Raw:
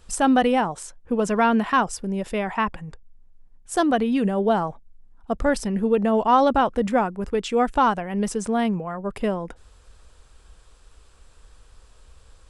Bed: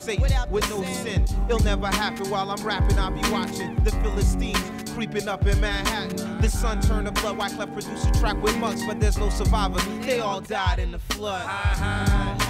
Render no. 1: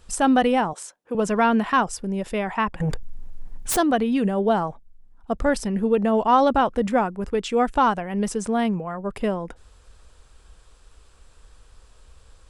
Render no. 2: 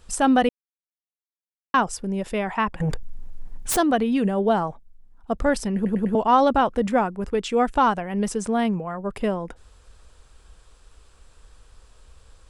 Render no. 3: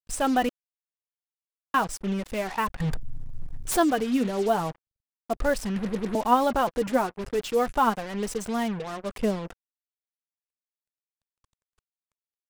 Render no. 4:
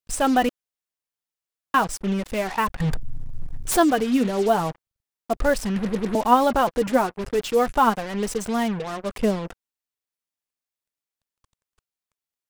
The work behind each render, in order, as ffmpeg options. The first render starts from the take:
-filter_complex "[0:a]asettb=1/sr,asplit=3[s0][s1][s2];[s0]atrim=end=0.734[s3];[s1]atrim=start=0.73:end=1.15,asetpts=PTS-STARTPTS,afade=t=in:d=0.004:c=qsin,afade=t=out:st=0.416:d=0.004:c=qsin,highpass=360[s4];[s2]atrim=start=1.146[s5];[s3][s4]acrossfade=d=0.004:c1=hsin:c2=qsin[s6];[s6][s5]acrossfade=d=0.004:c1=qsin:c2=hsin,asettb=1/sr,asplit=3[s7][s8][s9];[s7]atrim=end=2.804[s10];[s8]atrim=start=2.8:end=3.77,asetpts=PTS-STARTPTS,afade=t=in:d=0.004:c=qsin,afade=t=out:st=0.966:d=0.004:c=qsin,aeval=exprs='0.1*sin(PI/2*5.01*val(0)/0.1)':c=same[s11];[s9]atrim=start=3.766[s12];[s10][s11]acrossfade=d=0.004:c1=hsin:c2=qsin[s13];[s13][s12]acrossfade=d=0.004:c1=qsin:c2=hsin"
-filter_complex "[0:a]asplit=7[s0][s1][s2][s3][s4][s5][s6];[s0]atrim=end=0.49,asetpts=PTS-STARTPTS,afade=t=out:st=0.486:d=0.004:c=hsin[s7];[s1]atrim=start=0.49:end=1.74,asetpts=PTS-STARTPTS,volume=0[s8];[s2]atrim=start=1.74:end=5.852,asetpts=PTS-STARTPTS,afade=t=in:d=0.004:c=hsin[s9];[s3]atrim=start=5.748:end=5.852[s10];[s4]atrim=start=5.748:end=5.852[s11];[s5]atrim=start=5.748:end=5.852[s12];[s6]atrim=start=6.148[s13];[s7][s8][s9]concat=n=3:v=0:a=1[s14];[s14][s10]acrossfade=d=0.004:c1=hsin:c2=hsin[s15];[s15][s11]acrossfade=d=0.004:c1=hsin:c2=hsin[s16];[s16][s12]acrossfade=d=0.004:c1=hsin:c2=hsin[s17];[s17][s13]acrossfade=d=0.004:c1=hsin:c2=hsin"
-af "flanger=delay=0.8:depth=7.6:regen=39:speed=0.35:shape=triangular,acrusher=bits=5:mix=0:aa=0.5"
-af "volume=1.58"

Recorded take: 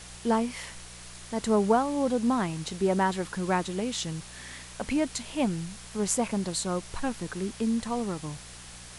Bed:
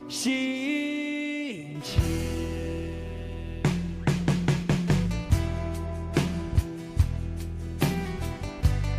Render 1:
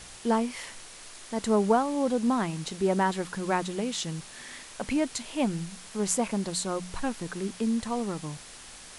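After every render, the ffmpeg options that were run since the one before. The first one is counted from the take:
-af "bandreject=f=60:t=h:w=4,bandreject=f=120:t=h:w=4,bandreject=f=180:t=h:w=4"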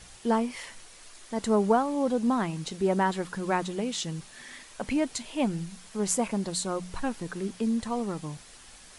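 -af "afftdn=nr=6:nf=-47"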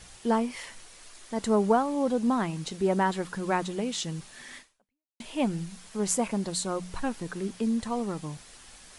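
-filter_complex "[0:a]asplit=2[s0][s1];[s0]atrim=end=5.2,asetpts=PTS-STARTPTS,afade=t=out:st=4.58:d=0.62:c=exp[s2];[s1]atrim=start=5.2,asetpts=PTS-STARTPTS,afade=t=in:d=0.004:c=hsin[s3];[s2][s3]concat=n=2:v=0:a=1"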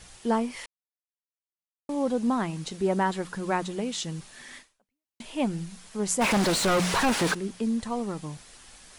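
-filter_complex "[0:a]asplit=3[s0][s1][s2];[s0]afade=t=out:st=6.2:d=0.02[s3];[s1]asplit=2[s4][s5];[s5]highpass=f=720:p=1,volume=70.8,asoftclip=type=tanh:threshold=0.168[s6];[s4][s6]amix=inputs=2:normalize=0,lowpass=f=3300:p=1,volume=0.501,afade=t=in:st=6.2:d=0.02,afade=t=out:st=7.33:d=0.02[s7];[s2]afade=t=in:st=7.33:d=0.02[s8];[s3][s7][s8]amix=inputs=3:normalize=0,asplit=3[s9][s10][s11];[s9]atrim=end=0.66,asetpts=PTS-STARTPTS,afade=t=out:st=0.656:d=0.004:c=hsin[s12];[s10]atrim=start=0.66:end=1.89,asetpts=PTS-STARTPTS,volume=0[s13];[s11]atrim=start=1.89,asetpts=PTS-STARTPTS,afade=t=in:d=0.004:c=hsin[s14];[s12][s13][s14]concat=n=3:v=0:a=1"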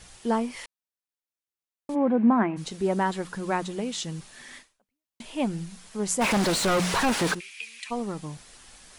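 -filter_complex "[0:a]asplit=3[s0][s1][s2];[s0]afade=t=out:st=1.94:d=0.02[s3];[s1]highpass=200,equalizer=f=220:t=q:w=4:g=10,equalizer=f=340:t=q:w=4:g=9,equalizer=f=690:t=q:w=4:g=6,equalizer=f=1000:t=q:w=4:g=4,equalizer=f=1600:t=q:w=4:g=5,equalizer=f=2300:t=q:w=4:g=7,lowpass=f=2300:w=0.5412,lowpass=f=2300:w=1.3066,afade=t=in:st=1.94:d=0.02,afade=t=out:st=2.56:d=0.02[s4];[s2]afade=t=in:st=2.56:d=0.02[s5];[s3][s4][s5]amix=inputs=3:normalize=0,asplit=3[s6][s7][s8];[s6]afade=t=out:st=7.39:d=0.02[s9];[s7]highpass=f=2400:t=q:w=8.7,afade=t=in:st=7.39:d=0.02,afade=t=out:st=7.9:d=0.02[s10];[s8]afade=t=in:st=7.9:d=0.02[s11];[s9][s10][s11]amix=inputs=3:normalize=0"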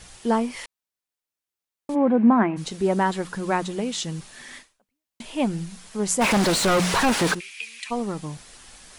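-af "volume=1.5"

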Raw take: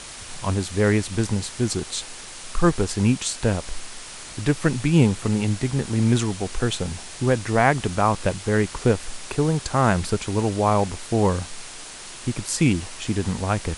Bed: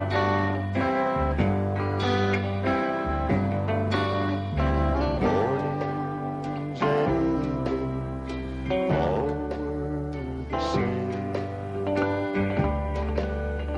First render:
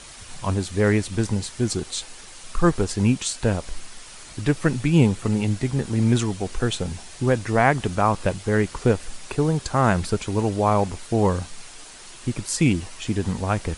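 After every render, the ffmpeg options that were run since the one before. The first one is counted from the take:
-af "afftdn=nr=6:nf=-39"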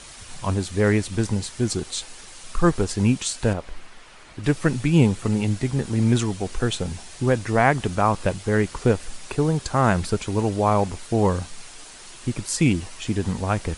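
-filter_complex "[0:a]asettb=1/sr,asplit=3[s0][s1][s2];[s0]atrim=end=3.534[s3];[s1]atrim=start=3.53:end=4.44,asetpts=PTS-STARTPTS,afade=t=in:d=0.004:c=qsin,afade=t=out:st=0.906:d=0.004:c=qsin,bass=f=250:g=-4,treble=f=4000:g=-14[s4];[s2]atrim=start=4.436[s5];[s3][s4]acrossfade=d=0.004:c1=hsin:c2=qsin[s6];[s6][s5]acrossfade=d=0.004:c1=qsin:c2=hsin"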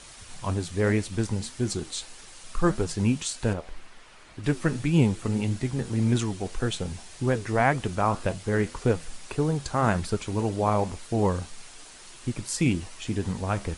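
-af "flanger=delay=6.5:depth=6.2:regen=-78:speed=1.8:shape=triangular"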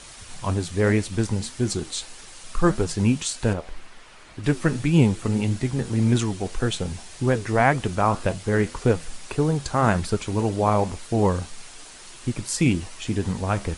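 -af "volume=1.5"

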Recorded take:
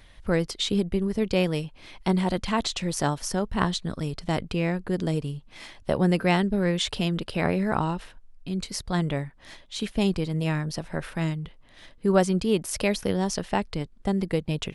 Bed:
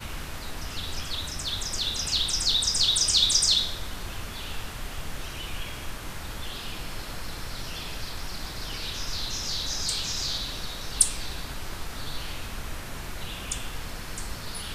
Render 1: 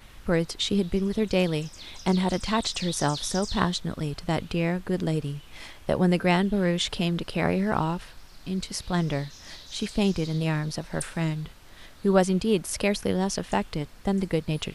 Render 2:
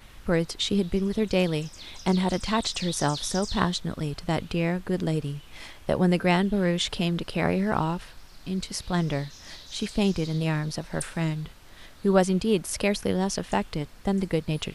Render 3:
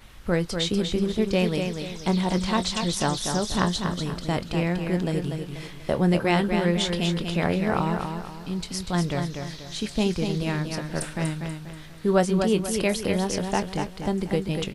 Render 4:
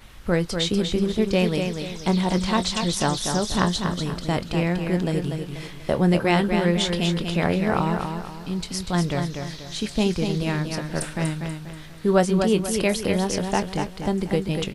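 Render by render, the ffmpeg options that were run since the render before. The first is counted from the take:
-filter_complex "[1:a]volume=0.168[s0];[0:a][s0]amix=inputs=2:normalize=0"
-af anull
-filter_complex "[0:a]asplit=2[s0][s1];[s1]adelay=23,volume=0.224[s2];[s0][s2]amix=inputs=2:normalize=0,aecho=1:1:242|484|726|968|1210:0.501|0.19|0.0724|0.0275|0.0105"
-af "volume=1.26"

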